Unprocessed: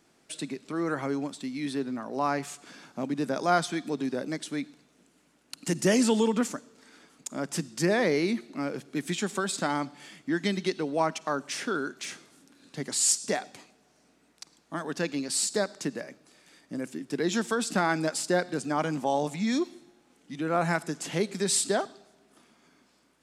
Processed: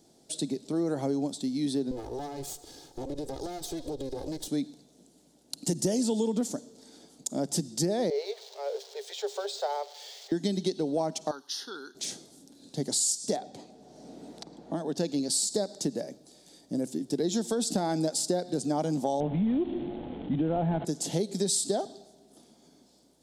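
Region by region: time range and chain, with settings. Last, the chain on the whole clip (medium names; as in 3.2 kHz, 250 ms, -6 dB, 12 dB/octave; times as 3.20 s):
1.91–4.48 s: comb filter that takes the minimum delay 2.4 ms + compression 12:1, threshold -35 dBFS
8.10–10.32 s: zero-crossing glitches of -26 dBFS + Chebyshev high-pass 400 Hz, order 10 + distance through air 210 m
11.31–11.95 s: high-pass 690 Hz + static phaser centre 2.3 kHz, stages 6
13.36–14.98 s: low-pass 2.8 kHz 6 dB/octave + three bands compressed up and down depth 70%
19.20–20.85 s: CVSD coder 16 kbps + bass shelf 180 Hz +7 dB + level flattener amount 50%
whole clip: high-order bell 1.7 kHz -15.5 dB; compression, threshold -29 dBFS; trim +4.5 dB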